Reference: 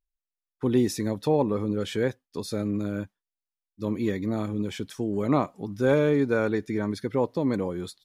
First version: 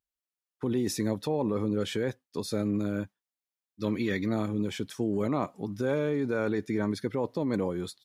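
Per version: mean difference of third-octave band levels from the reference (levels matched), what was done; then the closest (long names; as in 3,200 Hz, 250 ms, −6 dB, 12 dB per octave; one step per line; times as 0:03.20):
2.5 dB: high-pass filter 79 Hz
gain on a spectral selection 0:03.80–0:04.34, 1,200–6,100 Hz +7 dB
in parallel at +0.5 dB: compressor whose output falls as the input rises −27 dBFS, ratio −0.5
on the sum: level −8 dB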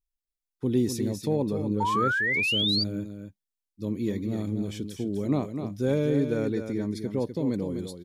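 5.0 dB: parametric band 1,200 Hz −13 dB 2 octaves
on a send: single-tap delay 250 ms −8 dB
on the sum: sound drawn into the spectrogram rise, 0:01.80–0:02.84, 870–4,800 Hz −26 dBFS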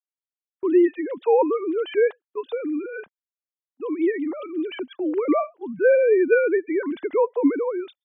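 15.0 dB: three sine waves on the formant tracks
noise gate −44 dBFS, range −25 dB
dynamic equaliser 690 Hz, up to +4 dB, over −36 dBFS, Q 1.5
level +3 dB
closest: first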